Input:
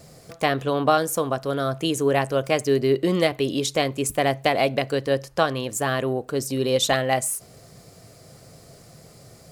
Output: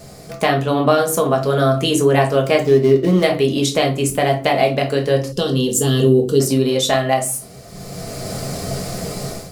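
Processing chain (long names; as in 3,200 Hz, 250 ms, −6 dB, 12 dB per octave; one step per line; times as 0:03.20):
0:02.58–0:03.23: running median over 15 samples
rectangular room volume 190 cubic metres, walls furnished, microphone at 1.4 metres
in parallel at +2.5 dB: downward compressor, threshold −23 dBFS, peak gain reduction 12.5 dB
0:05.32–0:06.40: on the sum: gain on a spectral selection 530–2,700 Hz −16 dB
automatic gain control gain up to 13 dB
level −1 dB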